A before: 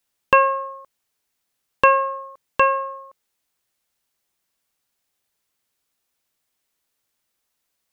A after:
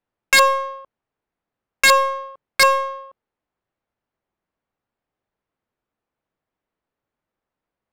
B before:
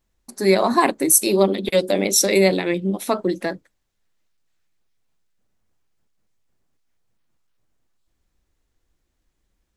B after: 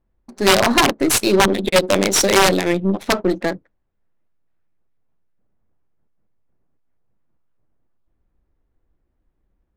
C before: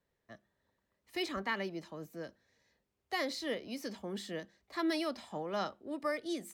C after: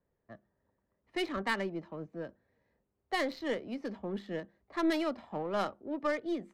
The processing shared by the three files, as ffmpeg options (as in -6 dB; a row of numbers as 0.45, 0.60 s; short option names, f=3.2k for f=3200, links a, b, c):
-af "aeval=exprs='(mod(2.66*val(0)+1,2)-1)/2.66':c=same,aeval=exprs='0.398*(cos(1*acos(clip(val(0)/0.398,-1,1)))-cos(1*PI/2))+0.02*(cos(8*acos(clip(val(0)/0.398,-1,1)))-cos(8*PI/2))':c=same,adynamicsmooth=sensitivity=6.5:basefreq=1.4k,volume=3.5dB"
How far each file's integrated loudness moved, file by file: +2.5, +2.0, +2.5 LU